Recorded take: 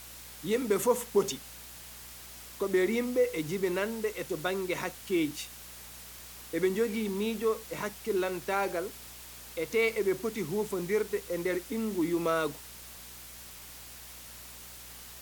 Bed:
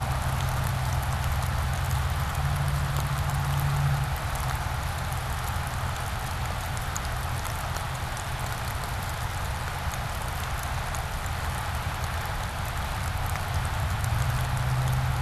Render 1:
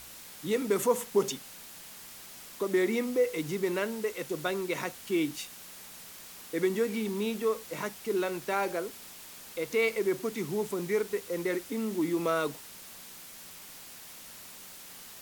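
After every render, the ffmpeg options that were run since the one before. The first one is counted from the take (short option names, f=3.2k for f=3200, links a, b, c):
-af "bandreject=f=60:t=h:w=4,bandreject=f=120:t=h:w=4"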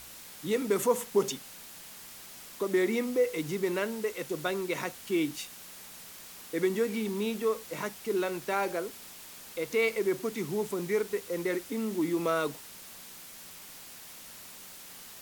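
-af anull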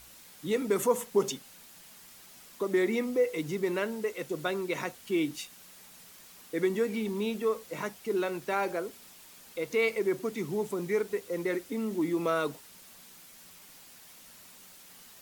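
-af "afftdn=nr=6:nf=-48"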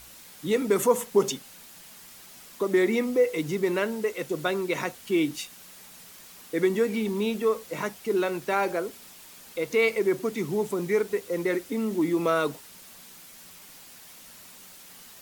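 -af "volume=4.5dB"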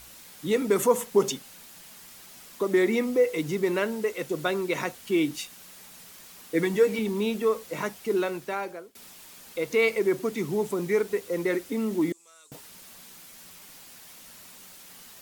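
-filter_complex "[0:a]asettb=1/sr,asplit=3[a][b][c];[a]atrim=end=6.544[d];[b]atrim=start=6.54:end=6.99,asetpts=PTS-STARTPTS,afade=t=in:d=0.004:c=qsin,afade=t=out:st=0.446:d=0.004:c=qsin,aecho=1:1:6.5:0.68,atrim=end_sample=19845[e];[c]atrim=start=6.986[f];[d][e]acrossfade=d=0.004:c1=hsin:c2=qsin[g];[g][f]acrossfade=d=0.004:c1=qsin:c2=hsin,asettb=1/sr,asplit=3[h][i][j];[h]atrim=end=12.124[k];[i]atrim=start=12.12:end=12.52,asetpts=PTS-STARTPTS,afade=t=in:d=0.004:c=qsin,afade=t=out:st=0.396:d=0.004:c=qsin,bandpass=f=7.6k:t=q:w=5.8[l];[j]atrim=start=12.516[m];[k][l]acrossfade=d=0.004:c1=hsin:c2=qsin[n];[n][m]acrossfade=d=0.004:c1=qsin:c2=hsin,asplit=2[o][p];[o]atrim=end=8.95,asetpts=PTS-STARTPTS,afade=t=out:st=8.13:d=0.82:silence=0.0630957[q];[p]atrim=start=8.95,asetpts=PTS-STARTPTS,afade=t=in:d=0.004:c=hsin:silence=0.0630957[r];[q][r]concat=n=2:v=0:a=1"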